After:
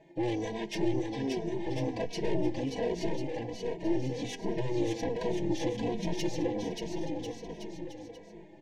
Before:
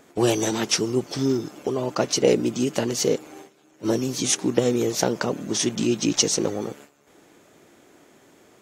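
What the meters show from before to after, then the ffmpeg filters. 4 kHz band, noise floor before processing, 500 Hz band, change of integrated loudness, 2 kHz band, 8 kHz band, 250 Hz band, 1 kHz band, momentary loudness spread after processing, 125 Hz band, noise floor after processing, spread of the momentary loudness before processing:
−15.0 dB, −57 dBFS, −9.0 dB, −10.5 dB, −9.5 dB, −23.0 dB, −7.5 dB, −7.0 dB, 10 LU, −6.0 dB, −50 dBFS, 7 LU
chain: -filter_complex "[0:a]asplit=2[link_01][link_02];[link_02]acompressor=threshold=-32dB:ratio=6,volume=-2.5dB[link_03];[link_01][link_03]amix=inputs=2:normalize=0,lowpass=2400,aecho=1:1:6.1:0.74,aeval=exprs='(tanh(10*val(0)+0.6)-tanh(0.6))/10':channel_layout=same,asuperstop=centerf=1300:order=8:qfactor=1.9,asplit=2[link_04][link_05];[link_05]aecho=0:1:580|1044|1415|1712|1950:0.631|0.398|0.251|0.158|0.1[link_06];[link_04][link_06]amix=inputs=2:normalize=0,asplit=2[link_07][link_08];[link_08]adelay=2.8,afreqshift=-1.3[link_09];[link_07][link_09]amix=inputs=2:normalize=1,volume=-4.5dB"

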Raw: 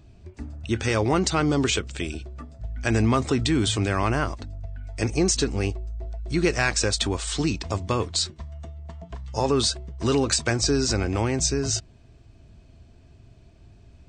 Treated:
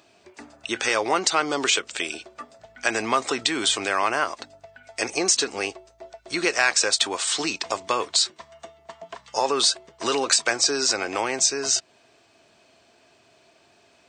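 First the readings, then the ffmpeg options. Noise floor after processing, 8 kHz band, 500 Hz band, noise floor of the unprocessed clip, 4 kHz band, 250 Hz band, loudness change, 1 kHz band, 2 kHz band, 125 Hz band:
−59 dBFS, +4.5 dB, −1.0 dB, −52 dBFS, +4.5 dB, −7.5 dB, +1.5 dB, +4.0 dB, +4.5 dB, −21.5 dB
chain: -filter_complex "[0:a]highpass=600,asplit=2[link_01][link_02];[link_02]acompressor=threshold=-32dB:ratio=6,volume=0dB[link_03];[link_01][link_03]amix=inputs=2:normalize=0,volume=2dB"

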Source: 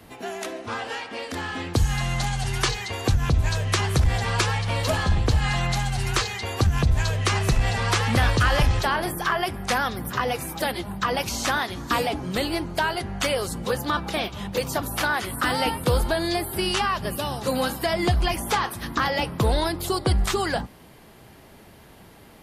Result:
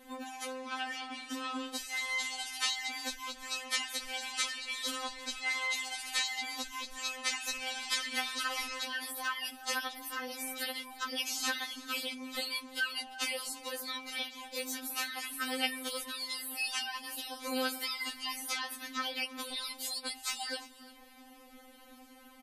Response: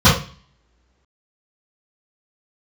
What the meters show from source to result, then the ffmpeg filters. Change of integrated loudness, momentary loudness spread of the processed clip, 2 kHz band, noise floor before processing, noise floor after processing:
−11.0 dB, 7 LU, −8.5 dB, −49 dBFS, −56 dBFS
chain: -filter_complex "[0:a]acrossover=split=1700[link_01][link_02];[link_01]acompressor=threshold=-37dB:ratio=5[link_03];[link_02]aecho=1:1:346:0.119[link_04];[link_03][link_04]amix=inputs=2:normalize=0,afftfilt=real='re*3.46*eq(mod(b,12),0)':imag='im*3.46*eq(mod(b,12),0)':win_size=2048:overlap=0.75,volume=-3dB"

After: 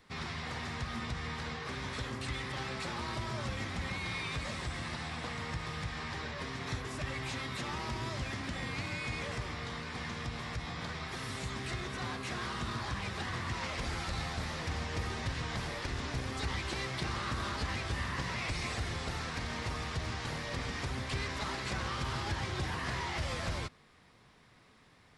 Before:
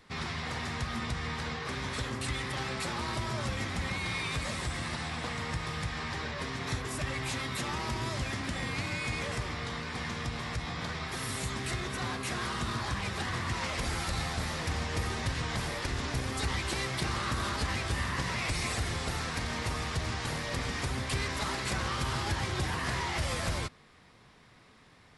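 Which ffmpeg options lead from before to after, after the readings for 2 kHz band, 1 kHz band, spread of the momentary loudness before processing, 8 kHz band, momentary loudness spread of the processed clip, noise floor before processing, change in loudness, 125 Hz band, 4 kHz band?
−3.5 dB, −3.5 dB, 4 LU, −7.0 dB, 4 LU, −58 dBFS, −3.5 dB, −3.5 dB, −4.0 dB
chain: -filter_complex "[0:a]acrossover=split=7000[link_01][link_02];[link_02]acompressor=threshold=-57dB:ratio=4:attack=1:release=60[link_03];[link_01][link_03]amix=inputs=2:normalize=0,volume=-3.5dB"

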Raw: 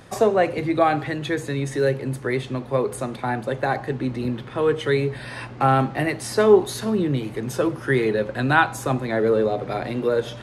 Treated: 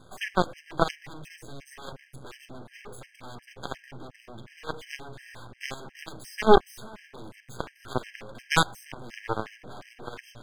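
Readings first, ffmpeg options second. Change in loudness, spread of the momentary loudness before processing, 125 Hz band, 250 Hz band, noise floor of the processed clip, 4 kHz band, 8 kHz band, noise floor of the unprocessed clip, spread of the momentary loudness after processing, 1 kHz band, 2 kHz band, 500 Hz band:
−6.5 dB, 8 LU, −13.5 dB, −12.0 dB, −59 dBFS, −1.5 dB, −5.5 dB, −38 dBFS, 21 LU, −6.5 dB, −8.5 dB, −10.5 dB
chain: -af "aeval=exprs='max(val(0),0)':channel_layout=same,aeval=exprs='0.631*(cos(1*acos(clip(val(0)/0.631,-1,1)))-cos(1*PI/2))+0.0891*(cos(3*acos(clip(val(0)/0.631,-1,1)))-cos(3*PI/2))+0.0708*(cos(4*acos(clip(val(0)/0.631,-1,1)))-cos(4*PI/2))+0.2*(cos(6*acos(clip(val(0)/0.631,-1,1)))-cos(6*PI/2))+0.178*(cos(8*acos(clip(val(0)/0.631,-1,1)))-cos(8*PI/2))':channel_layout=same,afftfilt=real='re*gt(sin(2*PI*2.8*pts/sr)*(1-2*mod(floor(b*sr/1024/1600),2)),0)':imag='im*gt(sin(2*PI*2.8*pts/sr)*(1-2*mod(floor(b*sr/1024/1600),2)),0)':win_size=1024:overlap=0.75,volume=3.5dB"

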